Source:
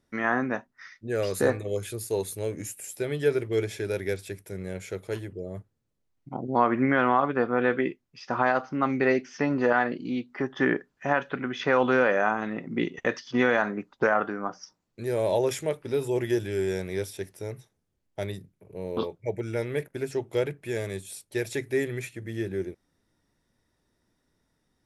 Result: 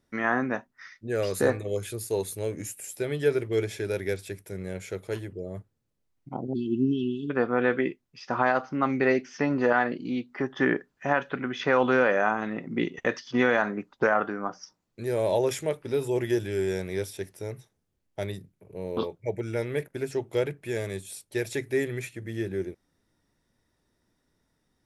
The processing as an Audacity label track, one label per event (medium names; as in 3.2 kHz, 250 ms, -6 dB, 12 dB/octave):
6.530000	7.300000	brick-wall FIR band-stop 420–2600 Hz